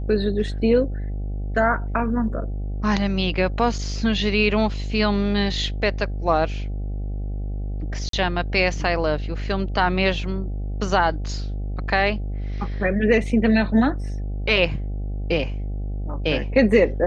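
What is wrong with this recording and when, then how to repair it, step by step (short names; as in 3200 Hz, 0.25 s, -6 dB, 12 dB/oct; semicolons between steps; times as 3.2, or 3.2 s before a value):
buzz 50 Hz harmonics 16 -27 dBFS
8.09–8.13 gap 43 ms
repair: de-hum 50 Hz, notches 16; interpolate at 8.09, 43 ms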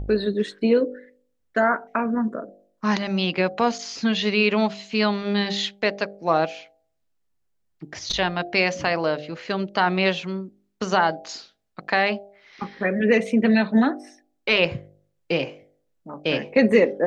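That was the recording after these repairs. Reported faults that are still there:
none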